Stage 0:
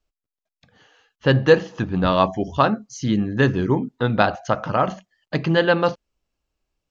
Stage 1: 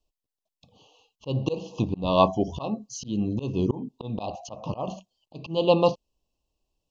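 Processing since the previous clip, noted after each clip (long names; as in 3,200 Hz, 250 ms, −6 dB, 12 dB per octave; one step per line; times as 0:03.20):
Chebyshev band-stop filter 1,100–2,600 Hz, order 4
volume swells 254 ms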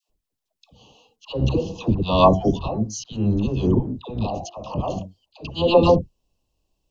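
sub-octave generator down 1 octave, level −3 dB
all-pass dispersion lows, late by 91 ms, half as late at 740 Hz
level +5 dB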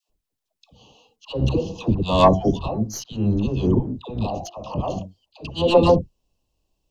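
stylus tracing distortion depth 0.027 ms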